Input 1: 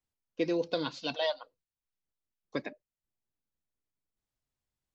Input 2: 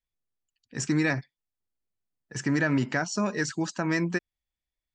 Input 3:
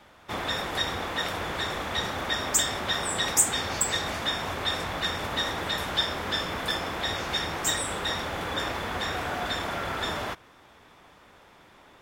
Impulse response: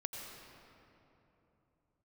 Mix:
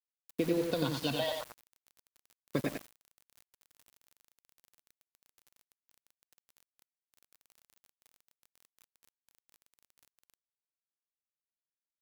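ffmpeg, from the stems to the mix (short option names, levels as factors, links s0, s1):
-filter_complex "[0:a]acompressor=threshold=0.0224:ratio=8,equalizer=f=95:w=0.59:g=14.5,volume=1.26,asplit=3[s0][s1][s2];[s1]volume=0.596[s3];[1:a]volume=0.355[s4];[2:a]lowpass=1400,aeval=exprs='val(0)+0.00316*(sin(2*PI*50*n/s)+sin(2*PI*2*50*n/s)/2+sin(2*PI*3*50*n/s)/3+sin(2*PI*4*50*n/s)/4+sin(2*PI*5*50*n/s)/5)':c=same,aeval=exprs='(mod(44.7*val(0)+1,2)-1)/44.7':c=same,volume=0.376,asplit=2[s5][s6];[s6]volume=0.398[s7];[s2]apad=whole_len=218081[s8];[s4][s8]sidechaincompress=threshold=0.0112:ratio=8:attack=16:release=1410[s9];[s9][s5]amix=inputs=2:normalize=0,firequalizer=gain_entry='entry(110,0);entry(200,-24);entry(290,-27);entry(530,-30);entry(860,-26);entry(1600,-6);entry(2200,-18);entry(4800,-26);entry(7200,-19);entry(10000,10)':delay=0.05:min_phase=1,acompressor=threshold=0.00316:ratio=10,volume=1[s10];[s3][s7]amix=inputs=2:normalize=0,aecho=0:1:91|182|273|364:1|0.24|0.0576|0.0138[s11];[s0][s10][s11]amix=inputs=3:normalize=0,aeval=exprs='val(0)*gte(abs(val(0)),0.00944)':c=same"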